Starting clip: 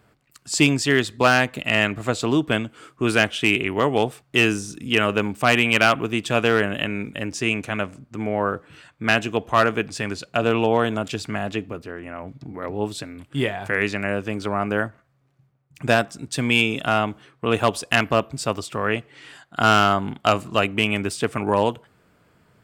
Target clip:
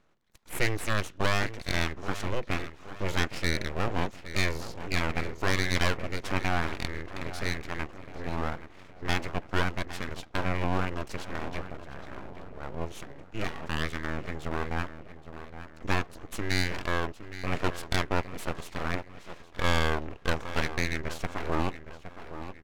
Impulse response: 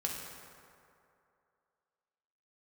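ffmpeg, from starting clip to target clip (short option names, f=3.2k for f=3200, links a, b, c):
-filter_complex "[0:a]lowpass=7.9k,asplit=2[a][b];[b]adelay=816,lowpass=f=2.7k:p=1,volume=-11.5dB,asplit=2[c][d];[d]adelay=816,lowpass=f=2.7k:p=1,volume=0.48,asplit=2[e][f];[f]adelay=816,lowpass=f=2.7k:p=1,volume=0.48,asplit=2[g][h];[h]adelay=816,lowpass=f=2.7k:p=1,volume=0.48,asplit=2[i][j];[j]adelay=816,lowpass=f=2.7k:p=1,volume=0.48[k];[a][c][e][g][i][k]amix=inputs=6:normalize=0,aeval=exprs='abs(val(0))':c=same,asetrate=35002,aresample=44100,atempo=1.25992,volume=-7dB"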